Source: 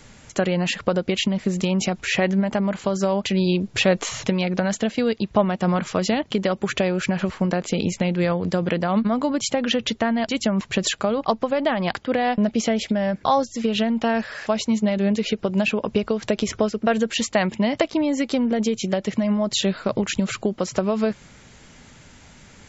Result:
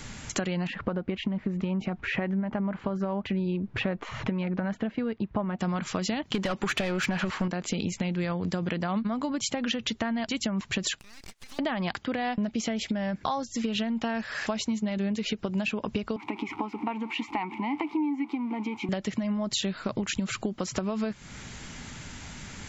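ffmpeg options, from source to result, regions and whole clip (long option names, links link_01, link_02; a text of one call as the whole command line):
ffmpeg -i in.wav -filter_complex "[0:a]asettb=1/sr,asplit=3[link_01][link_02][link_03];[link_01]atrim=end=0.674[link_04];[link_02]atrim=start=0.67:end=5.59,asetpts=PTS-STARTPTS,afade=type=in:duration=0.004:curve=qsin,afade=type=out:start_time=4.916:duration=0.004:curve=qsin,lowpass=1700,bandreject=frequency=720:width=23[link_05];[link_03]atrim=start=5.586[link_06];[link_04][link_05]acrossfade=duration=0.004:curve1=hsin:curve2=qsin[link_07];[link_07][link_06]acrossfade=duration=0.004:curve1=qsin:curve2=hsin,asettb=1/sr,asplit=3[link_08][link_09][link_10];[link_08]atrim=end=6.344[link_11];[link_09]atrim=start=6.34:end=7.48,asetpts=PTS-STARTPTS,afade=type=in:duration=0.004:curve=qsin,afade=type=out:start_time=1.136:duration=0.004:curve=qsin,asplit=2[link_12][link_13];[link_13]highpass=frequency=720:poles=1,volume=19dB,asoftclip=type=tanh:threshold=-8.5dB[link_14];[link_12][link_14]amix=inputs=2:normalize=0,lowpass=frequency=2600:poles=1,volume=-6dB,bass=frequency=250:gain=4,treble=frequency=4000:gain=3[link_15];[link_10]atrim=start=7.476[link_16];[link_11][link_15]acrossfade=duration=0.004:curve1=hsin:curve2=qsin[link_17];[link_17][link_16]acrossfade=duration=0.004:curve1=qsin:curve2=hsin,asettb=1/sr,asplit=3[link_18][link_19][link_20];[link_18]atrim=end=10.994[link_21];[link_19]atrim=start=10.99:end=11.59,asetpts=PTS-STARTPTS,afade=type=in:duration=0.004:curve=qsin,afade=type=out:start_time=0.596:duration=0.004:curve=qsin,highpass=frequency=1500:width=0.5412,highpass=frequency=1500:width=1.3066,acompressor=threshold=-46dB:ratio=6:attack=3.2:release=140:knee=1:detection=peak,aeval=exprs='abs(val(0))':channel_layout=same[link_22];[link_20]atrim=start=11.586[link_23];[link_21][link_22]acrossfade=duration=0.004:curve1=hsin:curve2=qsin[link_24];[link_24][link_23]acrossfade=duration=0.004:curve1=qsin:curve2=hsin,asettb=1/sr,asplit=3[link_25][link_26][link_27];[link_25]atrim=end=16.164[link_28];[link_26]atrim=start=16.16:end=18.89,asetpts=PTS-STARTPTS,afade=type=in:duration=0.004:curve=qsin,afade=type=out:start_time=2.726:duration=0.004:curve=qsin,aeval=exprs='val(0)+0.5*0.0251*sgn(val(0))':channel_layout=same,asplit=3[link_29][link_30][link_31];[link_29]bandpass=frequency=300:width_type=q:width=8,volume=0dB[link_32];[link_30]bandpass=frequency=870:width_type=q:width=8,volume=-6dB[link_33];[link_31]bandpass=frequency=2240:width_type=q:width=8,volume=-9dB[link_34];[link_32][link_33][link_34]amix=inputs=3:normalize=0,equalizer=frequency=1100:width=0.55:gain=15[link_35];[link_27]atrim=start=18.886[link_36];[link_28][link_35]acrossfade=duration=0.004:curve1=hsin:curve2=qsin[link_37];[link_37][link_36]acrossfade=duration=0.004:curve1=qsin:curve2=hsin,equalizer=frequency=520:width=1.6:gain=-6,acompressor=threshold=-35dB:ratio=4,volume=6dB" out.wav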